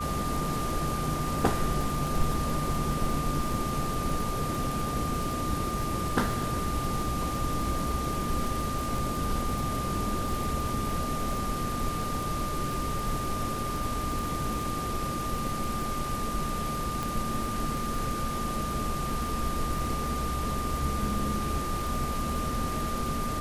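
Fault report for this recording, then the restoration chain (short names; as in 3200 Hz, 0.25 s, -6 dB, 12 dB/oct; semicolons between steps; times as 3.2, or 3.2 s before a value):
crackle 31/s -33 dBFS
tone 1200 Hz -33 dBFS
17.03 pop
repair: de-click; notch 1200 Hz, Q 30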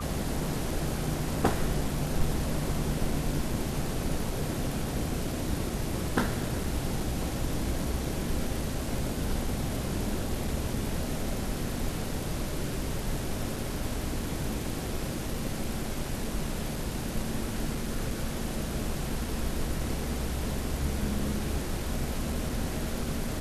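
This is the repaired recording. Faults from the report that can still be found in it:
none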